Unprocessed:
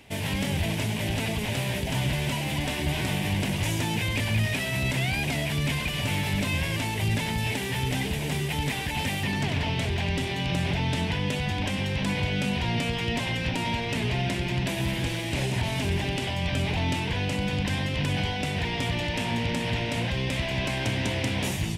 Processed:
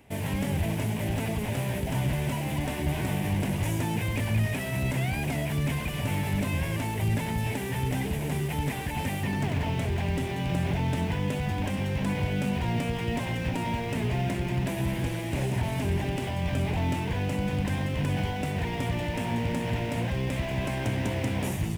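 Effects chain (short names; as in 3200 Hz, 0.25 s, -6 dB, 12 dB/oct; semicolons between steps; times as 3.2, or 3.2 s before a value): bell 4100 Hz -11 dB 1.8 oct; in parallel at -12 dB: bit-crush 6-bit; on the sum: gain -2 dB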